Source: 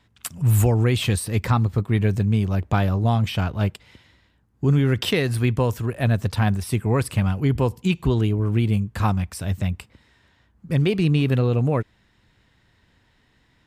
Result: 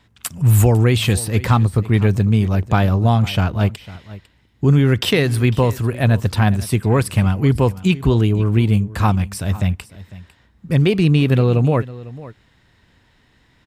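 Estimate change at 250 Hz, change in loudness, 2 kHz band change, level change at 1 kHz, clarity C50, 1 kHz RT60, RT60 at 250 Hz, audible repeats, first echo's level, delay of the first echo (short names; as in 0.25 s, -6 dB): +5.0 dB, +5.0 dB, +5.0 dB, +5.0 dB, none, none, none, 1, -18.0 dB, 0.501 s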